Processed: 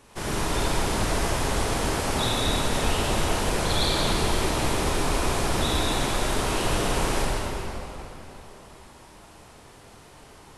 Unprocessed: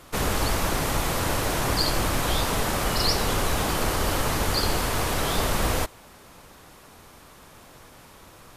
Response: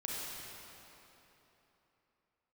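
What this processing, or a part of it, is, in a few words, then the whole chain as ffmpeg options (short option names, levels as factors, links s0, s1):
slowed and reverbed: -filter_complex "[0:a]asetrate=35721,aresample=44100[s0];[1:a]atrim=start_sample=2205[s1];[s0][s1]afir=irnorm=-1:irlink=0,volume=0.75"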